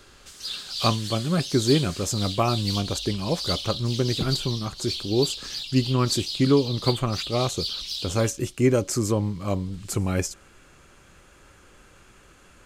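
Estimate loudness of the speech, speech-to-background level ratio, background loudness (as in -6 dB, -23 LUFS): -25.5 LUFS, 5.0 dB, -30.5 LUFS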